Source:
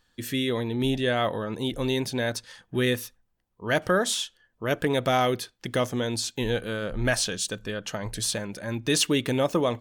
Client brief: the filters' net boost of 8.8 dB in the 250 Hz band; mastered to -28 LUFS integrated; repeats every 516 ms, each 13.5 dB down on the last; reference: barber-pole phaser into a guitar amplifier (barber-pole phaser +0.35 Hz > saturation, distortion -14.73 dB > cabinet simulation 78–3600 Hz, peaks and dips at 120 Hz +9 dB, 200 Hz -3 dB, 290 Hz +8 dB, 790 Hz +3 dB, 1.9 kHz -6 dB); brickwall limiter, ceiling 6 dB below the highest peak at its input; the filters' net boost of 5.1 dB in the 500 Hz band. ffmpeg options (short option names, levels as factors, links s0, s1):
-filter_complex "[0:a]equalizer=f=250:t=o:g=4,equalizer=f=500:t=o:g=4,alimiter=limit=0.2:level=0:latency=1,aecho=1:1:516|1032:0.211|0.0444,asplit=2[s0][s1];[s1]afreqshift=0.35[s2];[s0][s2]amix=inputs=2:normalize=1,asoftclip=threshold=0.0794,highpass=78,equalizer=f=120:t=q:w=4:g=9,equalizer=f=200:t=q:w=4:g=-3,equalizer=f=290:t=q:w=4:g=8,equalizer=f=790:t=q:w=4:g=3,equalizer=f=1900:t=q:w=4:g=-6,lowpass=f=3600:w=0.5412,lowpass=f=3600:w=1.3066,volume=1.12"